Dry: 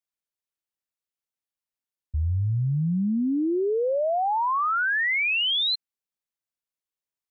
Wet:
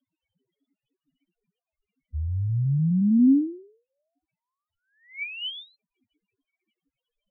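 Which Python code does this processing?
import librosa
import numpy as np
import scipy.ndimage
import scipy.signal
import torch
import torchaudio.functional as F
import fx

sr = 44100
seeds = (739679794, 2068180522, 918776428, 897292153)

y = scipy.signal.sosfilt(scipy.signal.ellip(3, 1.0, 40, [270.0, 2500.0], 'bandstop', fs=sr, output='sos'), x)
y = fx.peak_eq(y, sr, hz=140.0, db=5.5, octaves=1.2)
y = fx.dmg_crackle(y, sr, seeds[0], per_s=550.0, level_db=-40.0)
y = fx.spec_topn(y, sr, count=2)
y = fx.formant_cascade(y, sr, vowel='i')
y = y * 10.0 ** (8.5 / 20.0)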